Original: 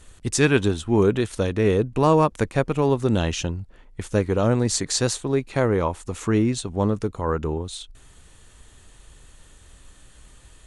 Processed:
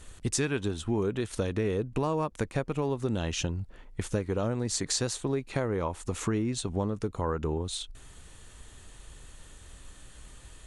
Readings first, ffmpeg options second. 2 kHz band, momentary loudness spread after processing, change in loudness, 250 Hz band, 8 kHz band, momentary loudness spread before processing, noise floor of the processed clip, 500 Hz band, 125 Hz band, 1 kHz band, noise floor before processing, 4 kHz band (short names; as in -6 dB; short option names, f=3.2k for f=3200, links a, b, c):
-9.5 dB, 21 LU, -9.0 dB, -8.5 dB, -5.0 dB, 10 LU, -51 dBFS, -9.5 dB, -8.0 dB, -10.0 dB, -51 dBFS, -5.5 dB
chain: -af "acompressor=threshold=-26dB:ratio=6"